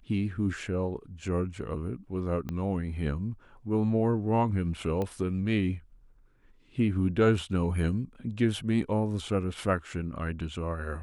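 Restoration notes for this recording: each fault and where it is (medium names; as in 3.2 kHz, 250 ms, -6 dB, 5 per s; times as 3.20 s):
2.49 s: pop -22 dBFS
5.02 s: pop -20 dBFS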